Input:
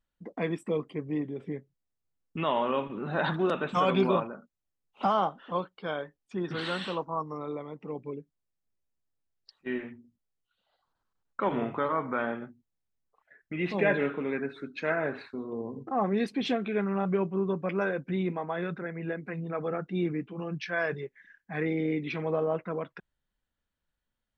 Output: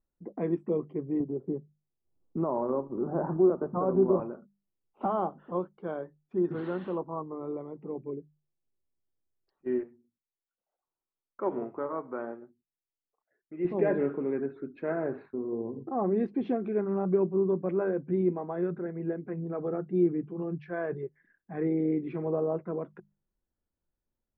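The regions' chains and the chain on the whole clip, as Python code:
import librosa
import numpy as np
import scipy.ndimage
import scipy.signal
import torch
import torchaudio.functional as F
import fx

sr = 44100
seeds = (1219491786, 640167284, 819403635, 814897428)

y = fx.chain(x, sr, fx.lowpass(hz=1200.0, slope=24),
    fx.transient(attack_db=-1, sustain_db=-7),
    fx.band_squash(depth_pct=40), at=(1.2, 4.2))
y = fx.chain(y, sr, fx.bass_treble(bass_db=-8, treble_db=-11),
    fx.upward_expand(threshold_db=-44.0, expansion=1.5), at=(9.83, 13.65))
y = scipy.signal.sosfilt(scipy.signal.bessel(2, 730.0, 'lowpass', norm='mag', fs=sr, output='sos'), y)
y = fx.peak_eq(y, sr, hz=360.0, db=8.0, octaves=0.28)
y = fx.hum_notches(y, sr, base_hz=50, count=4)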